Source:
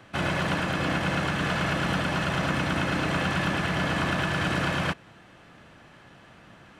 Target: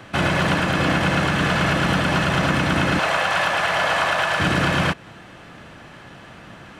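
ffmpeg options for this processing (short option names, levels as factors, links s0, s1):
-filter_complex "[0:a]asettb=1/sr,asplit=3[s0][s1][s2];[s0]atrim=end=2.994[s3];[s1]atrim=start=2.99:end=4.4,asetpts=PTS-STARTPTS,afade=t=in:d=0.004:c=qsin,afade=t=out:st=1.406:d=0.004:c=qsin,lowshelf=f=420:t=q:w=1.5:g=-14[s4];[s2]atrim=start=4.396[s5];[s3][s4]acrossfade=d=0.004:c1=hsin:c2=qsin[s6];[s6][s5]acrossfade=d=0.004:c1=qsin:c2=hsin,asplit=2[s7][s8];[s8]alimiter=limit=0.0794:level=0:latency=1:release=176,volume=1.26[s9];[s7][s9]amix=inputs=2:normalize=0,volume=1.33"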